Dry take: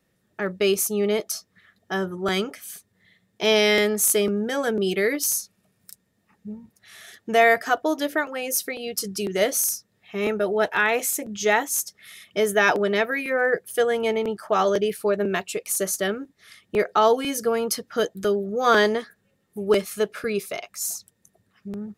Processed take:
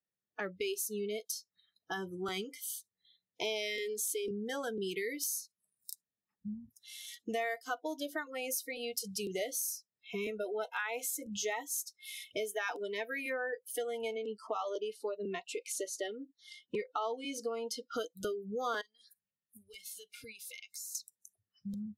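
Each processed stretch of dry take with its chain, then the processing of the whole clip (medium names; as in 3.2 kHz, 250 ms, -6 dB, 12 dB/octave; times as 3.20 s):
3.76–4.31 s: treble shelf 6.9 kHz -8 dB + static phaser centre 380 Hz, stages 4 + level flattener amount 50%
14.16–17.94 s: high-pass 140 Hz + distance through air 67 m
18.81–20.95 s: high-order bell 570 Hz -8.5 dB 2.6 oct + compression 10:1, threshold -41 dBFS
whole clip: bass shelf 350 Hz -4.5 dB; compression 4:1, threshold -36 dBFS; spectral noise reduction 28 dB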